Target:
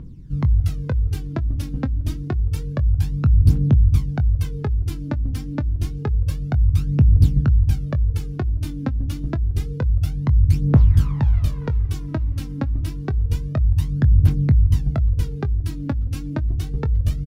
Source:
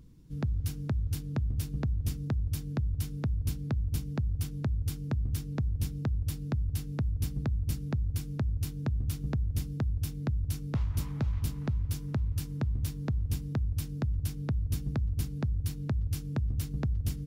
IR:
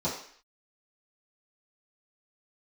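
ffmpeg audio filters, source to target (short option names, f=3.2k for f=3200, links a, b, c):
-filter_complex "[0:a]lowpass=f=2.3k:p=1,aphaser=in_gain=1:out_gain=1:delay=3.9:decay=0.65:speed=0.28:type=triangular,asplit=2[a][b];[b]adelay=22,volume=-13dB[c];[a][c]amix=inputs=2:normalize=0,volume=8.5dB"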